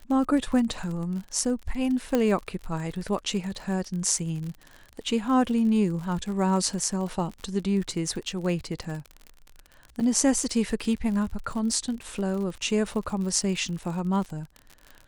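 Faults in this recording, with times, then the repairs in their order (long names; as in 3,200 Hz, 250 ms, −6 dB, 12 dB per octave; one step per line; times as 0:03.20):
surface crackle 56 per second −33 dBFS
0:02.15: click −11 dBFS
0:10.00–0:10.01: drop-out 6.2 ms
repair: click removal
repair the gap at 0:10.00, 6.2 ms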